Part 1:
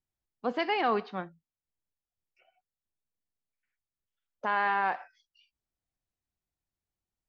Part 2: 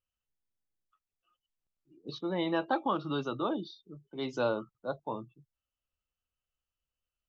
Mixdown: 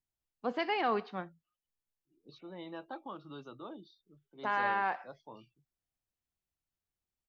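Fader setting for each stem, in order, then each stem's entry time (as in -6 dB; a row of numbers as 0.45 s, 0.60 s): -3.5 dB, -14.0 dB; 0.00 s, 0.20 s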